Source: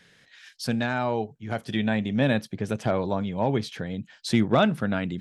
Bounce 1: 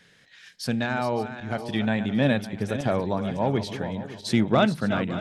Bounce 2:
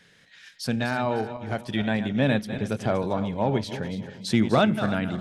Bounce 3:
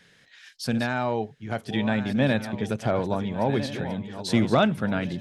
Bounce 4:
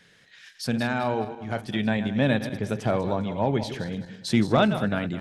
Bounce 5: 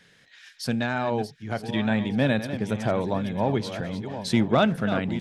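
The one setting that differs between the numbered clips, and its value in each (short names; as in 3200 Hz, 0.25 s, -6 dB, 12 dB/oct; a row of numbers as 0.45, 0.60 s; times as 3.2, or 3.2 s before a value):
regenerating reverse delay, time: 0.281, 0.152, 0.733, 0.104, 0.476 s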